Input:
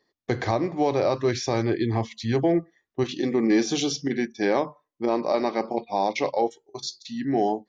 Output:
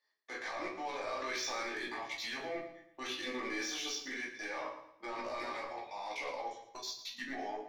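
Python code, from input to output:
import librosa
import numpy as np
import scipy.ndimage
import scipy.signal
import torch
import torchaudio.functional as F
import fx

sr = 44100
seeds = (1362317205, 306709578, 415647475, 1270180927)

y = scipy.signal.sosfilt(scipy.signal.butter(2, 890.0, 'highpass', fs=sr, output='sos'), x)
y = fx.peak_eq(y, sr, hz=1900.0, db=4.5, octaves=1.5)
y = fx.level_steps(y, sr, step_db=21)
y = 10.0 ** (-36.5 / 20.0) * np.tanh(y / 10.0 ** (-36.5 / 20.0))
y = fx.doubler(y, sr, ms=16.0, db=-6)
y = fx.echo_feedback(y, sr, ms=113, feedback_pct=37, wet_db=-12.0)
y = fx.room_shoebox(y, sr, seeds[0], volume_m3=250.0, walls='furnished', distance_m=2.5)
y = fx.env_flatten(y, sr, amount_pct=70, at=(1.07, 1.63))
y = F.gain(torch.from_numpy(y), -1.5).numpy()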